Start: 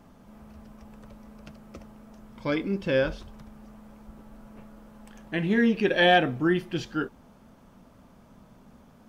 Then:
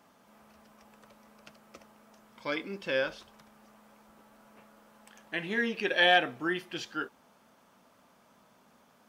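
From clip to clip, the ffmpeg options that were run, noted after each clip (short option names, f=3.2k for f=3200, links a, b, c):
-af "highpass=f=950:p=1"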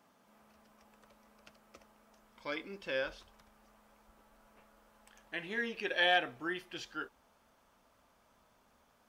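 -af "asubboost=boost=9:cutoff=57,volume=-5.5dB"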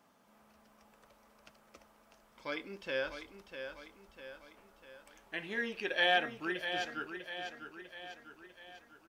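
-af "aecho=1:1:648|1296|1944|2592|3240|3888:0.376|0.192|0.0978|0.0499|0.0254|0.013"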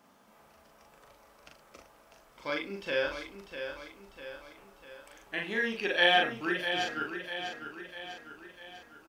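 -filter_complex "[0:a]asplit=2[a][b];[b]adelay=40,volume=-3dB[c];[a][c]amix=inputs=2:normalize=0,volume=4dB"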